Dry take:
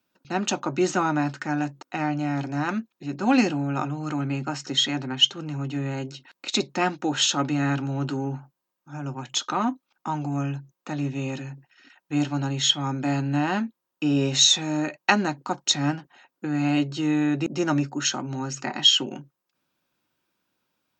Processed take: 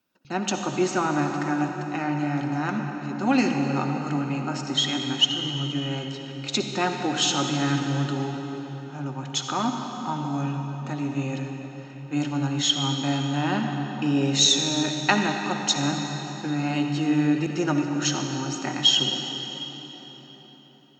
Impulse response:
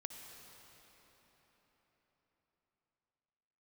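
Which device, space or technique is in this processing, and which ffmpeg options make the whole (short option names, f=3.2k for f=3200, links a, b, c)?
cathedral: -filter_complex "[1:a]atrim=start_sample=2205[a];[0:a][a]afir=irnorm=-1:irlink=0,volume=3dB"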